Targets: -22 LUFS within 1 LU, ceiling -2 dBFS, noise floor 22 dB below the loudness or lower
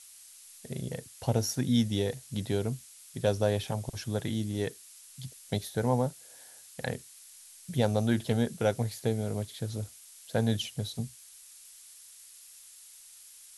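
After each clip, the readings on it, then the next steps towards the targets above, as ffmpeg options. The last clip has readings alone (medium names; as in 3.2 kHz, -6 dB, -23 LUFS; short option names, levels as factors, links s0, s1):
noise floor -53 dBFS; noise floor target -54 dBFS; loudness -31.5 LUFS; peak level -12.0 dBFS; loudness target -22.0 LUFS
-> -af "afftdn=nr=6:nf=-53"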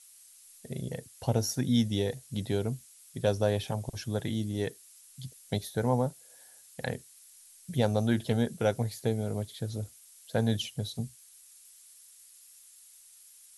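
noise floor -56 dBFS; loudness -31.5 LUFS; peak level -12.0 dBFS; loudness target -22.0 LUFS
-> -af "volume=2.99"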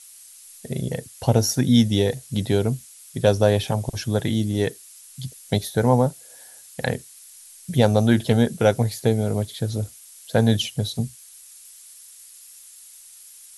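loudness -22.0 LUFS; peak level -2.5 dBFS; noise floor -46 dBFS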